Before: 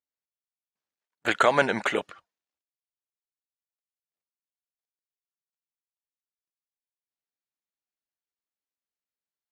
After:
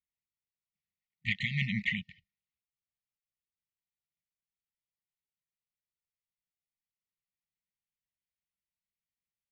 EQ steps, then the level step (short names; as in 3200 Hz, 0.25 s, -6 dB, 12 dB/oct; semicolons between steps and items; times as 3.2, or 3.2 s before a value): brick-wall FIR band-stop 220–1800 Hz; air absorption 95 m; tape spacing loss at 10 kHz 27 dB; +6.5 dB